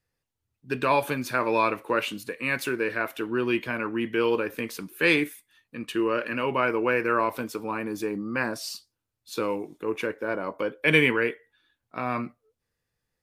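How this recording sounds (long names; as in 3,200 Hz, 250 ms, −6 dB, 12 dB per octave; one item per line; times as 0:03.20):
background noise floor −83 dBFS
spectral slope −3.0 dB per octave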